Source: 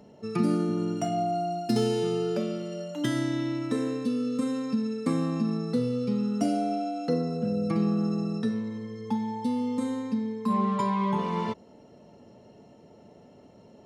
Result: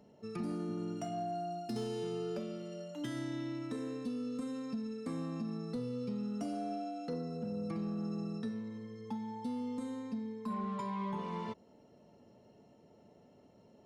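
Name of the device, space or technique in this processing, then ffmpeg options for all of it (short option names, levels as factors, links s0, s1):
soft clipper into limiter: -af "asoftclip=type=tanh:threshold=0.141,alimiter=limit=0.0841:level=0:latency=1:release=293,volume=0.355"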